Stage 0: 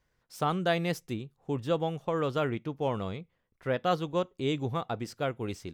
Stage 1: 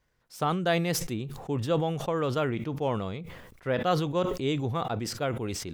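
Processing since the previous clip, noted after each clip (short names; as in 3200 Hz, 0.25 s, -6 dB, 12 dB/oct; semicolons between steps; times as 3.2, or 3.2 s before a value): sustainer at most 45 dB/s; gain +1 dB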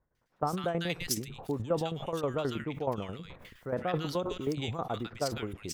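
harmonic-percussive split harmonic -4 dB; tremolo saw down 9.4 Hz, depth 75%; bands offset in time lows, highs 0.15 s, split 1500 Hz; gain +1.5 dB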